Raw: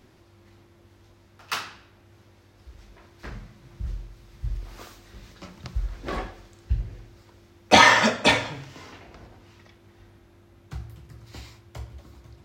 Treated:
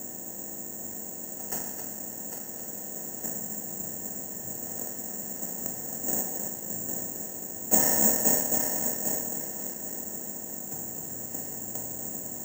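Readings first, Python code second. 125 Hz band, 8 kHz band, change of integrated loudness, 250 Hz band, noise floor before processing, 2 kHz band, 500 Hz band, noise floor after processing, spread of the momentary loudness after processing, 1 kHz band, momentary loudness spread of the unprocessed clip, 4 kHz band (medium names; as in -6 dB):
-9.5 dB, +10.5 dB, -7.0 dB, -3.0 dB, -56 dBFS, -19.0 dB, -6.0 dB, -39 dBFS, 13 LU, -14.0 dB, 26 LU, -17.0 dB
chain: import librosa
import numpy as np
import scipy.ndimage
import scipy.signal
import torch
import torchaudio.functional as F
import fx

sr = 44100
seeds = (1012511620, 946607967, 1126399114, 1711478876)

p1 = fx.bin_compress(x, sr, power=0.4)
p2 = scipy.signal.sosfilt(scipy.signal.butter(4, 140.0, 'highpass', fs=sr, output='sos'), p1)
p3 = fx.quant_companded(p2, sr, bits=2)
p4 = p2 + (p3 * 10.0 ** (-9.0 / 20.0))
p5 = scipy.signal.lfilter(np.full(38, 1.0 / 38), 1.0, p4)
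p6 = fx.dmg_crackle(p5, sr, seeds[0], per_s=520.0, level_db=-36.0)
p7 = p6 + fx.echo_heads(p6, sr, ms=267, heads='first and third', feedback_pct=40, wet_db=-8, dry=0)
p8 = (np.kron(scipy.signal.resample_poly(p7, 1, 6), np.eye(6)[0]) * 6)[:len(p7)]
y = p8 * 10.0 ** (-15.0 / 20.0)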